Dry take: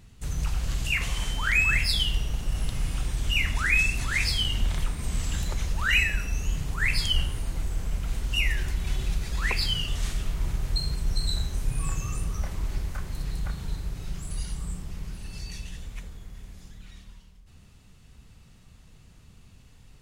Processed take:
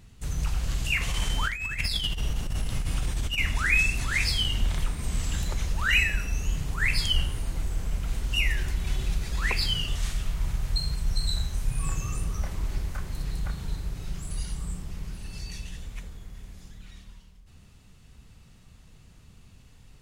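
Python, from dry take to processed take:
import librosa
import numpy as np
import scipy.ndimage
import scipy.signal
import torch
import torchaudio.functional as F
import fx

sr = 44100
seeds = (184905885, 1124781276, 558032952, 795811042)

y = fx.over_compress(x, sr, threshold_db=-26.0, ratio=-0.5, at=(1.08, 3.38))
y = fx.peak_eq(y, sr, hz=340.0, db=-5.5, octaves=1.3, at=(9.95, 11.83))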